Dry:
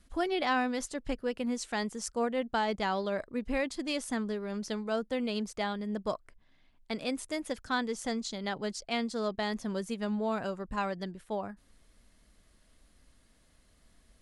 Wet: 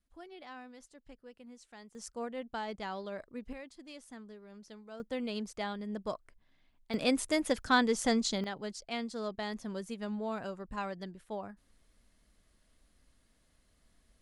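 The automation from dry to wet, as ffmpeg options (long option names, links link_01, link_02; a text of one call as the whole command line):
ffmpeg -i in.wav -af "asetnsamples=nb_out_samples=441:pad=0,asendcmd='1.95 volume volume -8.5dB;3.53 volume volume -16dB;5 volume volume -4dB;6.94 volume volume 5dB;8.44 volume volume -5dB',volume=-19.5dB" out.wav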